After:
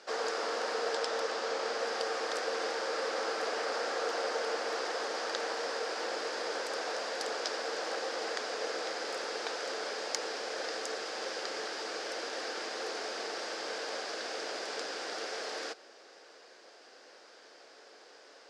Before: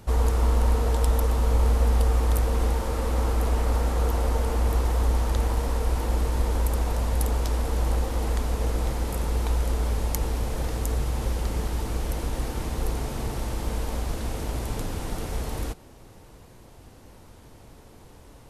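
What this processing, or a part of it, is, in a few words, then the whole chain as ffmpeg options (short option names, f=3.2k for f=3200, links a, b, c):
phone speaker on a table: -filter_complex "[0:a]asettb=1/sr,asplit=3[a][b][c];[a]atrim=end=0.964[d];[b]atrim=start=0.96:end=1.8,asetpts=PTS-STARTPTS,afade=t=in:d=0.004:c=qsin,afade=t=out:st=0.836:d=0.004:c=qsin,lowpass=9.3k[e];[c]atrim=start=1.796[f];[d][e]acrossfade=d=0.004:c1=hsin:c2=qsin[g];[g][f]acrossfade=d=0.004:c1=qsin:c2=hsin,highpass=f=430:w=0.5412,highpass=f=430:w=1.3066,equalizer=f=940:t=q:w=4:g=-8,equalizer=f=1.6k:t=q:w=4:g=7,equalizer=f=4.9k:t=q:w=4:g=9,lowpass=f=6.6k:w=0.5412,lowpass=f=6.6k:w=1.3066"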